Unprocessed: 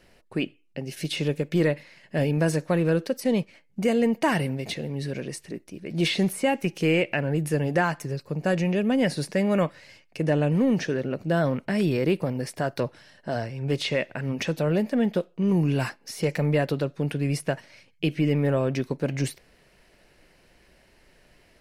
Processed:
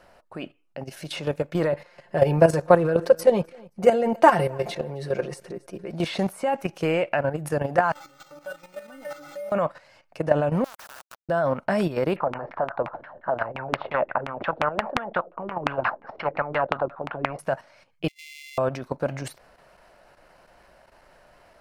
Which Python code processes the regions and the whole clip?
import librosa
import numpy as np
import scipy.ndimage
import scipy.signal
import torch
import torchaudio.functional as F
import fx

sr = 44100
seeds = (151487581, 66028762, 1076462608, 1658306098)

y = fx.chain(x, sr, fx.peak_eq(hz=420.0, db=12.0, octaves=0.28),
    fx.comb(ms=5.7, depth=0.7),
    fx.echo_feedback(ms=264, feedback_pct=33, wet_db=-24.0), at=(1.72, 5.93))
y = fx.chain(y, sr, fx.crossing_spikes(level_db=-23.0),
    fx.stiff_resonator(f0_hz=290.0, decay_s=0.37, stiffness=0.002),
    fx.resample_bad(factor=4, down='none', up='hold'), at=(7.92, 9.52))
y = fx.chain(y, sr, fx.highpass(hz=1400.0, slope=24),
    fx.quant_companded(bits=2),
    fx.spectral_comp(ratio=2.0), at=(10.64, 11.29))
y = fx.chain(y, sr, fx.lowpass(hz=4400.0, slope=24),
    fx.filter_lfo_lowpass(shape='saw_down', hz=5.7, low_hz=270.0, high_hz=2400.0, q=4.7),
    fx.spectral_comp(ratio=2.0), at=(12.16, 17.39))
y = fx.chain(y, sr, fx.sample_sort(block=64),
    fx.brickwall_highpass(low_hz=2000.0),
    fx.tilt_eq(slope=-3.0), at=(18.08, 18.58))
y = fx.band_shelf(y, sr, hz=910.0, db=12.0, octaves=1.7)
y = fx.level_steps(y, sr, step_db=11)